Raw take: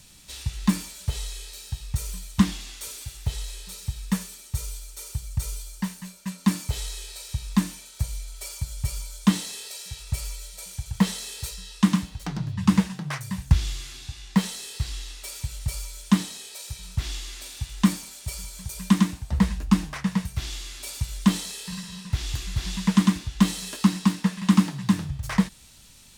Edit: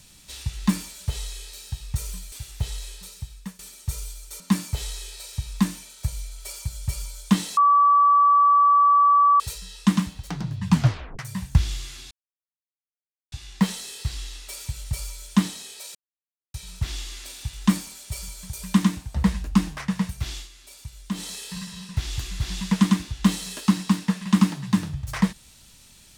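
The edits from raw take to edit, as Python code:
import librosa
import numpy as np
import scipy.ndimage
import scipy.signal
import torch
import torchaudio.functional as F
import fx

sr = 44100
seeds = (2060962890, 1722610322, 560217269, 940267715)

y = fx.edit(x, sr, fx.cut(start_s=2.32, length_s=0.66),
    fx.fade_out_to(start_s=3.54, length_s=0.71, floor_db=-19.0),
    fx.cut(start_s=5.06, length_s=1.3),
    fx.bleep(start_s=9.53, length_s=1.83, hz=1150.0, db=-13.0),
    fx.tape_stop(start_s=12.65, length_s=0.5),
    fx.insert_silence(at_s=14.07, length_s=1.21),
    fx.insert_silence(at_s=16.7, length_s=0.59),
    fx.fade_down_up(start_s=20.44, length_s=1.07, db=-10.5, fade_s=0.21, curve='qsin'), tone=tone)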